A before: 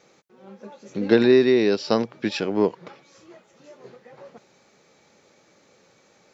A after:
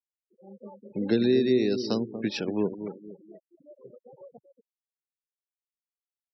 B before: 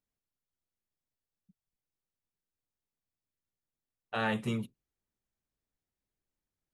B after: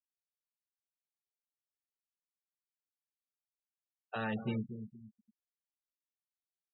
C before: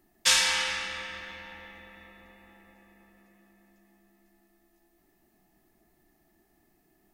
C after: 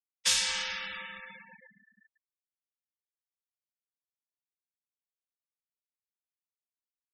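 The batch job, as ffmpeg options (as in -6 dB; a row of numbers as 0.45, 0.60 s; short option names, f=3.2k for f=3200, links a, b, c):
-filter_complex "[0:a]acrossover=split=360|3000[a][b][c];[b]acompressor=threshold=-33dB:ratio=4[d];[a][d][c]amix=inputs=3:normalize=0,asplit=2[e][f];[f]adelay=236,lowpass=f=1.3k:p=1,volume=-9dB,asplit=2[g][h];[h]adelay=236,lowpass=f=1.3k:p=1,volume=0.38,asplit=2[i][j];[j]adelay=236,lowpass=f=1.3k:p=1,volume=0.38,asplit=2[k][l];[l]adelay=236,lowpass=f=1.3k:p=1,volume=0.38[m];[e][g][i][k][m]amix=inputs=5:normalize=0,afftfilt=real='re*gte(hypot(re,im),0.0178)':imag='im*gte(hypot(re,im),0.0178)':win_size=1024:overlap=0.75,volume=-3dB"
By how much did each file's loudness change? -6.5, -5.0, -3.5 LU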